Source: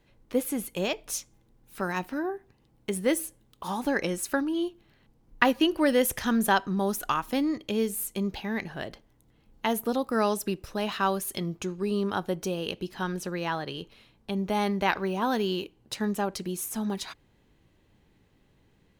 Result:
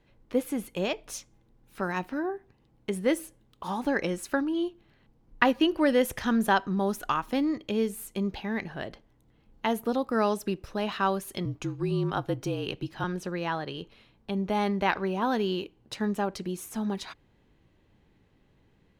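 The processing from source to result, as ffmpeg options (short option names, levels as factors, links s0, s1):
-filter_complex "[0:a]asettb=1/sr,asplit=3[s0][s1][s2];[s0]atrim=end=11.454[s3];[s1]atrim=start=11.45:end=13.04,asetpts=PTS-STARTPTS,afade=t=in:d=0.004:c=qsin,afade=t=out:st=1.586:d=0.004:c=qsin,afreqshift=-41[s4];[s2]atrim=start=13.036[s5];[s3][s4]acrossfade=d=0.004:c1=hsin:c2=qsin[s6];[s6][s5]acrossfade=d=0.004:c1=qsin:c2=hsin,highshelf=f=6300:g=-11"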